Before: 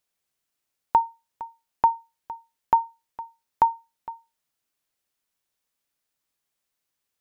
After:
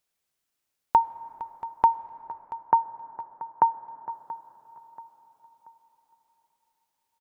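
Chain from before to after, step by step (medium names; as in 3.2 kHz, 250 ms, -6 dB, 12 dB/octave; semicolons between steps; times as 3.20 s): 1.95–4.10 s: elliptic band-pass 120–1700 Hz; feedback delay 682 ms, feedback 38%, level -17.5 dB; reverberation RT60 5.0 s, pre-delay 58 ms, DRR 17.5 dB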